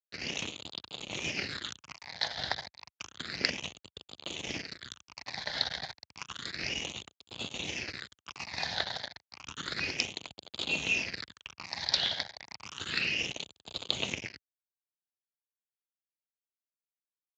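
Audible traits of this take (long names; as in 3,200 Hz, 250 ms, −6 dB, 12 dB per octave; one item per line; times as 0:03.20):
tremolo triangle 0.94 Hz, depth 70%
a quantiser's noise floor 6 bits, dither none
phaser sweep stages 8, 0.31 Hz, lowest notch 340–1,800 Hz
Speex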